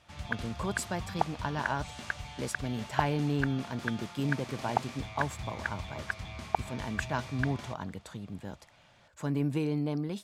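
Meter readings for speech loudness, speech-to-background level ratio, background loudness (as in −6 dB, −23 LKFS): −35.0 LKFS, 3.0 dB, −38.0 LKFS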